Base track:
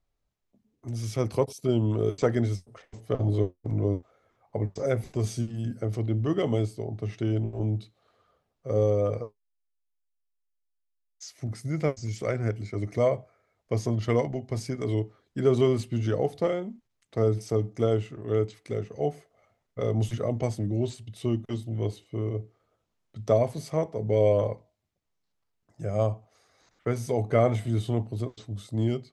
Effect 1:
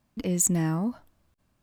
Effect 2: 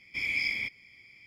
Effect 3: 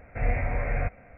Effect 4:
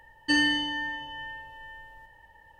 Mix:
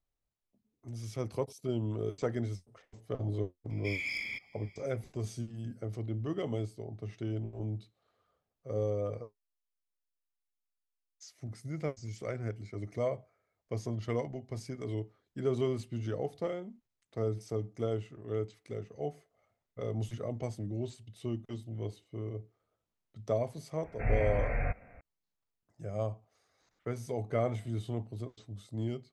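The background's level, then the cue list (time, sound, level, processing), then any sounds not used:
base track −9 dB
0:03.70: mix in 2 −5.5 dB + soft clipping −22.5 dBFS
0:23.84: mix in 3 −4.5 dB
not used: 1, 4

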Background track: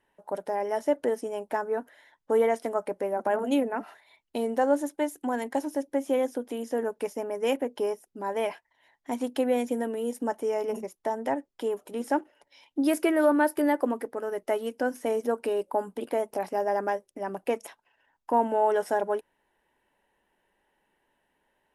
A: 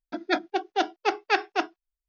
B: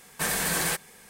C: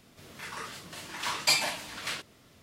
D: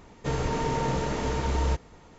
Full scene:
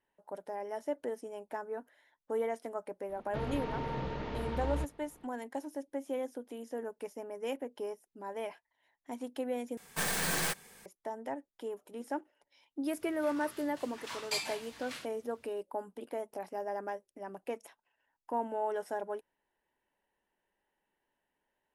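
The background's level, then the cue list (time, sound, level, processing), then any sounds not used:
background track −10.5 dB
0:03.09: mix in D −9.5 dB + low-pass filter 4,100 Hz 24 dB per octave
0:09.77: overwrite with B −5 dB + stylus tracing distortion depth 0.046 ms
0:12.84: mix in C −10.5 dB
not used: A

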